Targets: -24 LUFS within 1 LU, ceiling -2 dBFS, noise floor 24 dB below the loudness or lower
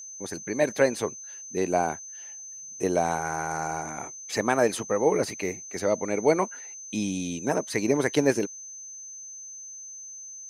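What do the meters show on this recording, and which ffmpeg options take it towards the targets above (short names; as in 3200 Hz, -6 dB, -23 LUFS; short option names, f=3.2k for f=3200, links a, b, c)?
steady tone 6200 Hz; tone level -39 dBFS; loudness -27.0 LUFS; peak -7.0 dBFS; loudness target -24.0 LUFS
-> -af "bandreject=f=6.2k:w=30"
-af "volume=3dB"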